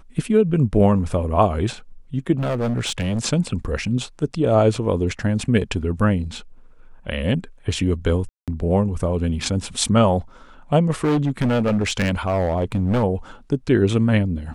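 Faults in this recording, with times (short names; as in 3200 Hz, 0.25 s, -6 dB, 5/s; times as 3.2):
2.32–3.2 clipped -18.5 dBFS
8.29–8.48 gap 0.187 s
11.04–13.04 clipped -15.5 dBFS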